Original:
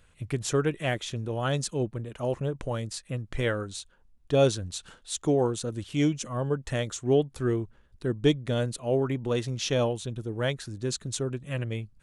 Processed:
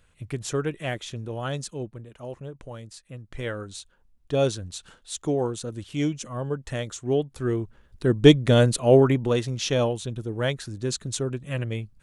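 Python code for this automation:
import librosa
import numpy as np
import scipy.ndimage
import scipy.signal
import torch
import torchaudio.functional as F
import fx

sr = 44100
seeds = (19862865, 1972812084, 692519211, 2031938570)

y = fx.gain(x, sr, db=fx.line((1.36, -1.5), (2.28, -8.0), (3.1, -8.0), (3.73, -1.0), (7.31, -1.0), (8.35, 10.0), (8.99, 10.0), (9.45, 2.5)))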